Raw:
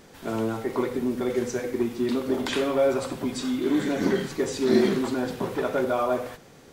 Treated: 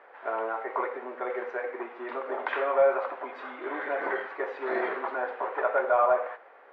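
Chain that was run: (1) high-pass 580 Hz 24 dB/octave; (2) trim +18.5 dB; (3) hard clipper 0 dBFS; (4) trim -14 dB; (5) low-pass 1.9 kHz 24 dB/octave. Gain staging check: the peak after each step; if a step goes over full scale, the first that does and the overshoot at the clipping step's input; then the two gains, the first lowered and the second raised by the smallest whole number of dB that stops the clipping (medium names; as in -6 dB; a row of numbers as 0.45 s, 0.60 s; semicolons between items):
-15.5 dBFS, +3.0 dBFS, 0.0 dBFS, -14.0 dBFS, -13.0 dBFS; step 2, 3.0 dB; step 2 +15.5 dB, step 4 -11 dB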